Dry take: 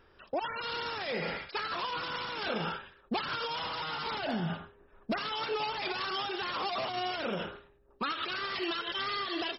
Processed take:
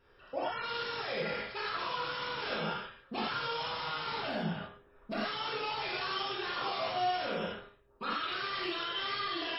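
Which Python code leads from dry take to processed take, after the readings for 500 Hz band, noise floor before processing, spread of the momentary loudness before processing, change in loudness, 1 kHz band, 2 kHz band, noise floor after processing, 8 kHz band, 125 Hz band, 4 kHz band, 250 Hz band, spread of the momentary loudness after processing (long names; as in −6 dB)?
−1.0 dB, −63 dBFS, 5 LU, −1.0 dB, −0.5 dB, −1.0 dB, −63 dBFS, can't be measured, −2.0 dB, −1.0 dB, −3.0 dB, 5 LU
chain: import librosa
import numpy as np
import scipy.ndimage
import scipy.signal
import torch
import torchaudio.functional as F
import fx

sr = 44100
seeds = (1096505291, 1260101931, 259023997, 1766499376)

y = fx.rev_gated(x, sr, seeds[0], gate_ms=140, shape='flat', drr_db=-7.5)
y = y * 10.0 ** (-9.0 / 20.0)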